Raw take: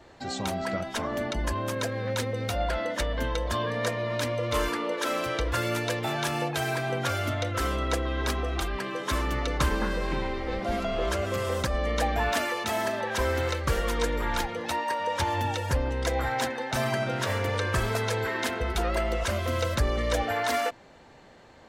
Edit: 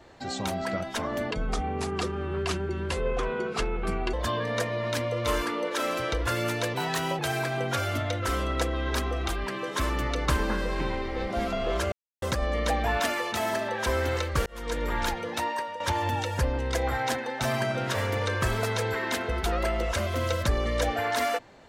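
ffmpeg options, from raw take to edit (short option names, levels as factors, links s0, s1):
-filter_complex "[0:a]asplit=9[s0][s1][s2][s3][s4][s5][s6][s7][s8];[s0]atrim=end=1.314[s9];[s1]atrim=start=1.31:end=3.4,asetpts=PTS-STARTPTS,asetrate=32634,aresample=44100[s10];[s2]atrim=start=3.396:end=6.014[s11];[s3]atrim=start=6.01:end=6.51,asetpts=PTS-STARTPTS,asetrate=49392,aresample=44100,atrim=end_sample=19687,asetpts=PTS-STARTPTS[s12];[s4]atrim=start=6.506:end=11.24,asetpts=PTS-STARTPTS,afade=t=out:st=4.73:d=0.004:c=hsin[s13];[s5]atrim=start=11.24:end=11.54,asetpts=PTS-STARTPTS,volume=0[s14];[s6]atrim=start=11.54:end=13.78,asetpts=PTS-STARTPTS,afade=t=in:d=0.004:c=hsin,afade=t=out:st=2.236:d=0.004:c=hsin[s15];[s7]atrim=start=13.78:end=15.12,asetpts=PTS-STARTPTS,afade=t=in:d=0.41,afade=t=out:st=1.04:d=0.3:silence=0.251189[s16];[s8]atrim=start=15.12,asetpts=PTS-STARTPTS,afade=t=in:d=0.004:c=hsin:silence=0.251189[s17];[s9][s10]acrossfade=d=0.004:c1=hsin:c2=hsin[s18];[s18][s11]acrossfade=d=0.004:c1=hsin:c2=hsin[s19];[s19][s12]acrossfade=d=0.004:c1=hsin:c2=hsin[s20];[s13][s14][s15][s16][s17]concat=n=5:v=0:a=1[s21];[s20][s21]acrossfade=d=0.004:c1=hsin:c2=hsin"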